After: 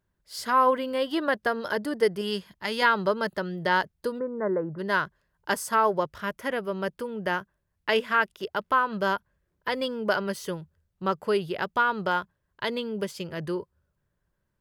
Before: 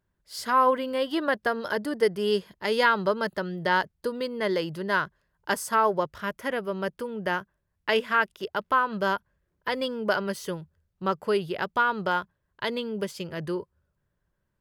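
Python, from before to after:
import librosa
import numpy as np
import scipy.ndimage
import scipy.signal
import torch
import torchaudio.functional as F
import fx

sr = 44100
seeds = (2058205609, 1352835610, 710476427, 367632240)

y = fx.peak_eq(x, sr, hz=450.0, db=-8.5, octaves=1.0, at=(2.21, 2.82))
y = fx.steep_lowpass(y, sr, hz=1600.0, slope=48, at=(4.18, 4.78), fade=0.02)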